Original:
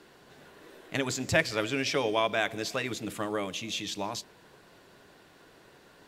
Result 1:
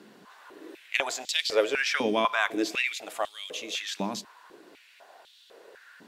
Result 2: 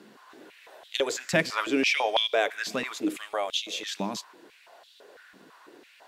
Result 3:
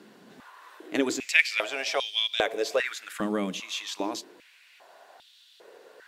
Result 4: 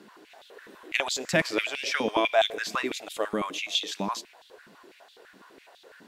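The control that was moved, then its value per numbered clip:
high-pass on a step sequencer, speed: 4, 6, 2.5, 12 Hertz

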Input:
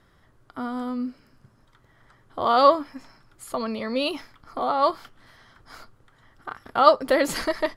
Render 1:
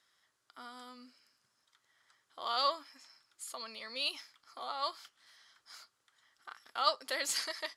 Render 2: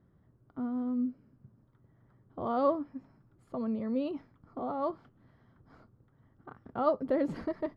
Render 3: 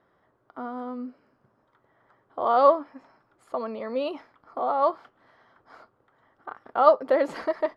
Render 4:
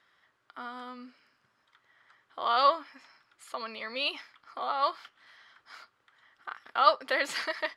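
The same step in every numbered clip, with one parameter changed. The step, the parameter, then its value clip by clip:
resonant band-pass, frequency: 6,400, 160, 640, 2,500 Hertz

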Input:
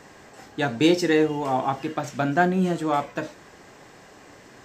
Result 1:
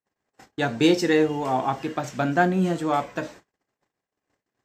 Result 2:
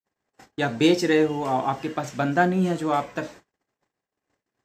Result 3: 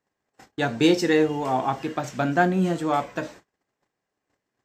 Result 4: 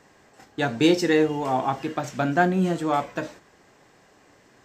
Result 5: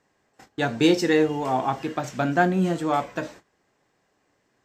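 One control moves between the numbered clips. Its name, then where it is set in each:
noise gate, range: −47, −59, −34, −8, −21 decibels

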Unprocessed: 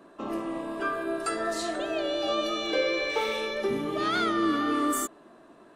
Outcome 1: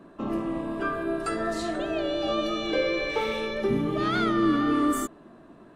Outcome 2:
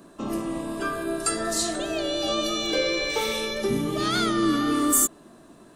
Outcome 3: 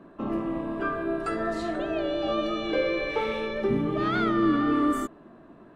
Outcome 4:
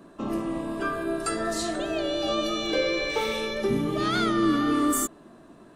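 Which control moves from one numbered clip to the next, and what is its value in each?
bass and treble, treble: −5, +14, −15, +5 decibels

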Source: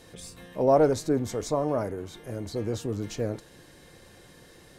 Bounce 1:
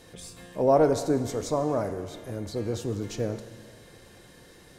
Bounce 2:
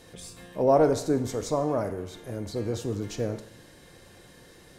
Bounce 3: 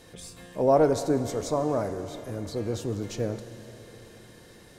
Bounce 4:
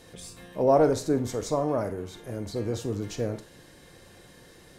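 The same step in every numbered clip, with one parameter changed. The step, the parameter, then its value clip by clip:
four-comb reverb, RT60: 1.9, 0.73, 4.2, 0.34 seconds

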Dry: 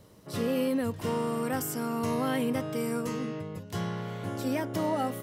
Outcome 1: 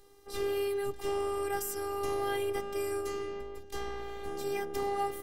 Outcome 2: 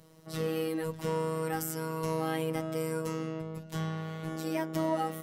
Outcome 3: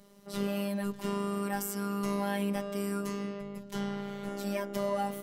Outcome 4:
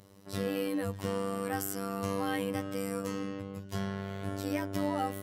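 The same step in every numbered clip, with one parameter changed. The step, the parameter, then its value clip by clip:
phases set to zero, frequency: 400, 160, 200, 98 Hertz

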